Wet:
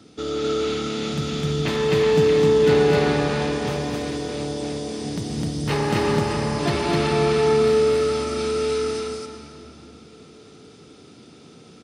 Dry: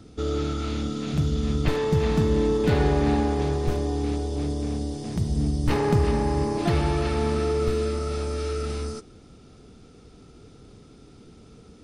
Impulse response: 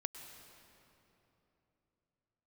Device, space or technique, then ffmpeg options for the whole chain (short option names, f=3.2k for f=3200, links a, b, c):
stadium PA: -filter_complex "[0:a]highpass=160,equalizer=f=3.5k:t=o:w=2.4:g=5,aecho=1:1:224.5|256.6:0.316|0.891[a];[1:a]atrim=start_sample=2205[b];[a][b]afir=irnorm=-1:irlink=0,volume=2.5dB"